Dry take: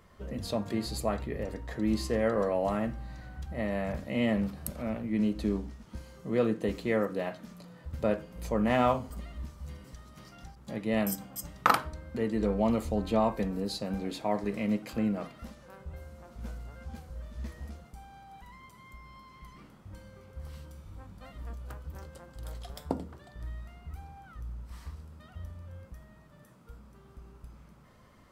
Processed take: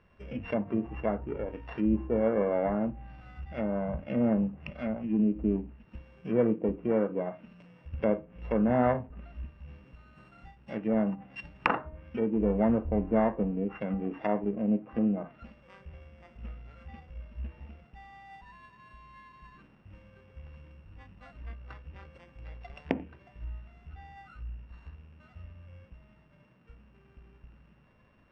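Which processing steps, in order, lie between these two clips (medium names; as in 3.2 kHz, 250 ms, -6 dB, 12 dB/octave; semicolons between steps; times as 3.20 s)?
sorted samples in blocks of 16 samples; Chebyshev low-pass 2.2 kHz, order 2; low-pass that closes with the level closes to 950 Hz, closed at -30 dBFS; spectral noise reduction 7 dB; trim +3.5 dB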